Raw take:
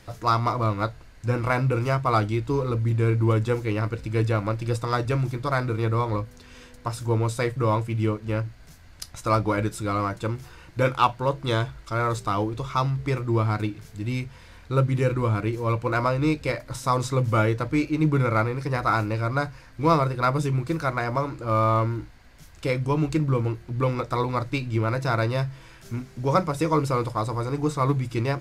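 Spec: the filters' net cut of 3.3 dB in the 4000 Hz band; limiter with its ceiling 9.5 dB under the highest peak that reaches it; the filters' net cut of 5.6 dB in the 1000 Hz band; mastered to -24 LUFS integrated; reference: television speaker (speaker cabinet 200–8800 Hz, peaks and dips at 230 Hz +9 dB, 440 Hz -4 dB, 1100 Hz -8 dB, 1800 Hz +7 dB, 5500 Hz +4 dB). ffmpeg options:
-af "equalizer=f=1k:t=o:g=-3,equalizer=f=4k:t=o:g=-5.5,alimiter=limit=-17.5dB:level=0:latency=1,highpass=f=200:w=0.5412,highpass=f=200:w=1.3066,equalizer=f=230:t=q:w=4:g=9,equalizer=f=440:t=q:w=4:g=-4,equalizer=f=1.1k:t=q:w=4:g=-8,equalizer=f=1.8k:t=q:w=4:g=7,equalizer=f=5.5k:t=q:w=4:g=4,lowpass=f=8.8k:w=0.5412,lowpass=f=8.8k:w=1.3066,volume=6.5dB"

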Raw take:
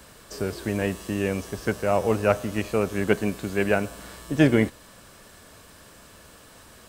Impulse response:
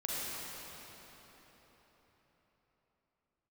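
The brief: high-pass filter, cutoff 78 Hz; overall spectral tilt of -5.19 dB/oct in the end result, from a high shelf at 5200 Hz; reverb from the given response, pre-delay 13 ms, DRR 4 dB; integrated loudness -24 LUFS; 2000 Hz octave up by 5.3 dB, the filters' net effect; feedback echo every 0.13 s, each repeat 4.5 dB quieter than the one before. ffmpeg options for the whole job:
-filter_complex "[0:a]highpass=78,equalizer=f=2k:t=o:g=8,highshelf=f=5.2k:g=-8.5,aecho=1:1:130|260|390|520|650|780|910|1040|1170:0.596|0.357|0.214|0.129|0.0772|0.0463|0.0278|0.0167|0.01,asplit=2[a][b];[1:a]atrim=start_sample=2205,adelay=13[c];[b][c]afir=irnorm=-1:irlink=0,volume=-9dB[d];[a][d]amix=inputs=2:normalize=0,volume=-3dB"

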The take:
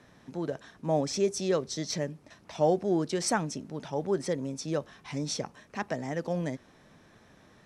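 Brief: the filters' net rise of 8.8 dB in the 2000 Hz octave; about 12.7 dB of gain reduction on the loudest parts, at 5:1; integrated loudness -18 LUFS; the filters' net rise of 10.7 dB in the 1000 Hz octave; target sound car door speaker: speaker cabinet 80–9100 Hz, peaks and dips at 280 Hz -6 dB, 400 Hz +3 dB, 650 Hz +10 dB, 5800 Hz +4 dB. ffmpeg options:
-af "equalizer=f=1k:t=o:g=9,equalizer=f=2k:t=o:g=7.5,acompressor=threshold=-30dB:ratio=5,highpass=80,equalizer=f=280:t=q:w=4:g=-6,equalizer=f=400:t=q:w=4:g=3,equalizer=f=650:t=q:w=4:g=10,equalizer=f=5.8k:t=q:w=4:g=4,lowpass=f=9.1k:w=0.5412,lowpass=f=9.1k:w=1.3066,volume=14.5dB"

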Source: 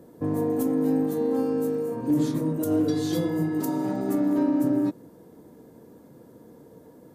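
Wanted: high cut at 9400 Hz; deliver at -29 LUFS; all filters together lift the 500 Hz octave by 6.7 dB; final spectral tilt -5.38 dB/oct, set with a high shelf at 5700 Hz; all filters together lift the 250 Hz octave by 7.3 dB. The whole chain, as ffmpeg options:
-af "lowpass=9.4k,equalizer=f=250:t=o:g=7,equalizer=f=500:t=o:g=5.5,highshelf=f=5.7k:g=-4,volume=-10.5dB"

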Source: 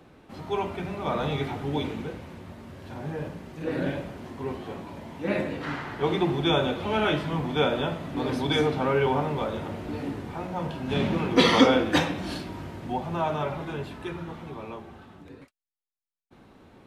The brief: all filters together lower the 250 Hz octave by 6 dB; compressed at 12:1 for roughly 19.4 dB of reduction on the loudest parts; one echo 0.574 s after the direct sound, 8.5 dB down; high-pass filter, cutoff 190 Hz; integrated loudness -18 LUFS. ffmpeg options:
-af "highpass=190,equalizer=f=250:t=o:g=-6,acompressor=threshold=-36dB:ratio=12,aecho=1:1:574:0.376,volume=22.5dB"

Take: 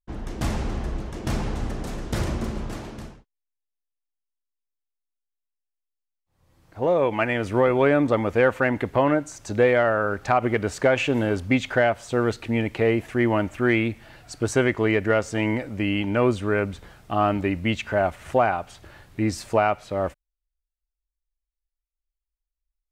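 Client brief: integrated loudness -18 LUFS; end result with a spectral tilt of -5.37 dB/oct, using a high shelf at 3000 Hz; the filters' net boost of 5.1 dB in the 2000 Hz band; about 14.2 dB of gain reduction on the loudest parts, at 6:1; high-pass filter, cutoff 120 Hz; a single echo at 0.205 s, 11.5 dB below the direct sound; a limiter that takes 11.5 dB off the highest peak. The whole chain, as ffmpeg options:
-af "highpass=120,equalizer=f=2k:t=o:g=8,highshelf=f=3k:g=-4.5,acompressor=threshold=-29dB:ratio=6,alimiter=level_in=1dB:limit=-24dB:level=0:latency=1,volume=-1dB,aecho=1:1:205:0.266,volume=18.5dB"

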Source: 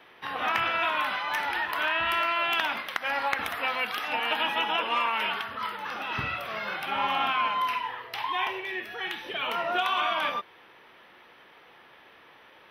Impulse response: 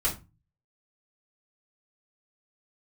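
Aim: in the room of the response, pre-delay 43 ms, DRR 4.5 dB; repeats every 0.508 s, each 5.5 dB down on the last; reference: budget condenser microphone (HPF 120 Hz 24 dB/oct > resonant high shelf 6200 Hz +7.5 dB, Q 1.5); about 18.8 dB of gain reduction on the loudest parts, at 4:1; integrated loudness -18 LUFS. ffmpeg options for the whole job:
-filter_complex "[0:a]acompressor=threshold=-46dB:ratio=4,aecho=1:1:508|1016|1524|2032|2540|3048|3556:0.531|0.281|0.149|0.079|0.0419|0.0222|0.0118,asplit=2[a][b];[1:a]atrim=start_sample=2205,adelay=43[c];[b][c]afir=irnorm=-1:irlink=0,volume=-12.5dB[d];[a][d]amix=inputs=2:normalize=0,highpass=f=120:w=0.5412,highpass=f=120:w=1.3066,highshelf=f=6.2k:t=q:w=1.5:g=7.5,volume=24.5dB"

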